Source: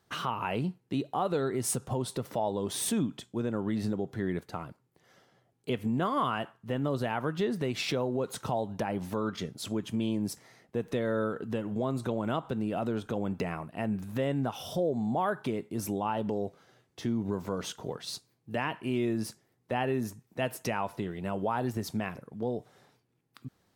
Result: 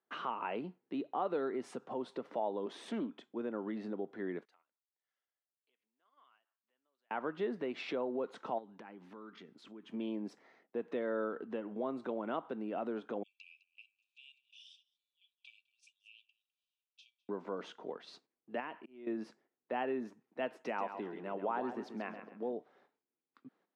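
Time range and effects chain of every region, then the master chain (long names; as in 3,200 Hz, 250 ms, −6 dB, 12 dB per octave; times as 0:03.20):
0:02.66–0:03.27: high-pass filter 160 Hz 24 dB per octave + highs frequency-modulated by the lows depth 0.18 ms
0:04.45–0:07.11: downward compressor 2.5 to 1, threshold −47 dBFS + first difference
0:08.58–0:09.90: parametric band 620 Hz −10.5 dB 0.82 octaves + downward compressor 4 to 1, threshold −40 dBFS
0:13.23–0:17.29: linear-phase brick-wall band-pass 2,300–10,000 Hz + single-tap delay 208 ms −14.5 dB + highs frequency-modulated by the lows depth 0.26 ms
0:18.60–0:19.07: downward compressor 1.5 to 1, threshold −41 dBFS + volume swells 434 ms
0:20.51–0:22.53: high-pass filter 100 Hz + repeating echo 134 ms, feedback 32%, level −9.5 dB
whole clip: low-pass filter 2,400 Hz 12 dB per octave; noise gate −60 dBFS, range −11 dB; high-pass filter 240 Hz 24 dB per octave; level −5 dB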